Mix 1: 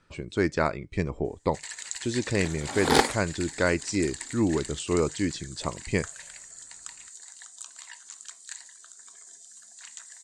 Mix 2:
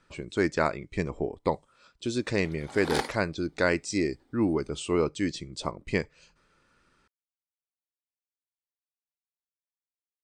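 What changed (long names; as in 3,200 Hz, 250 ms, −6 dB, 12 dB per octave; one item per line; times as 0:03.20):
first sound: muted
second sound −8.5 dB
master: add parametric band 86 Hz −5 dB 1.7 octaves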